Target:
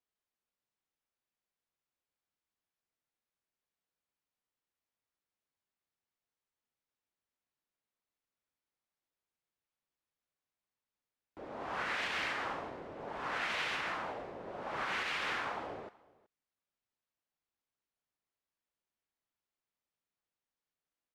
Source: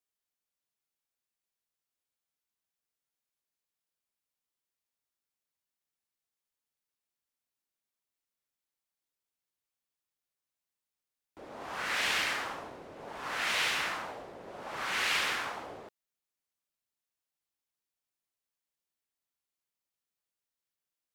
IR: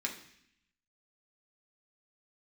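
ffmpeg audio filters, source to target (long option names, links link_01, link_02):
-af "aemphasis=mode=reproduction:type=75fm,alimiter=level_in=3.5dB:limit=-24dB:level=0:latency=1:release=162,volume=-3.5dB,aecho=1:1:375:0.0708,volume=1dB"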